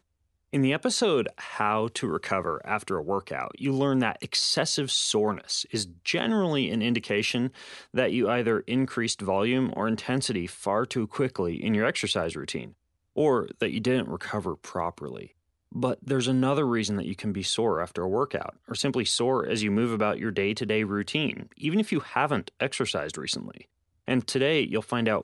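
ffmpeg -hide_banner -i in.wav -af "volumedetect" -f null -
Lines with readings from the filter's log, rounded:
mean_volume: -27.5 dB
max_volume: -10.7 dB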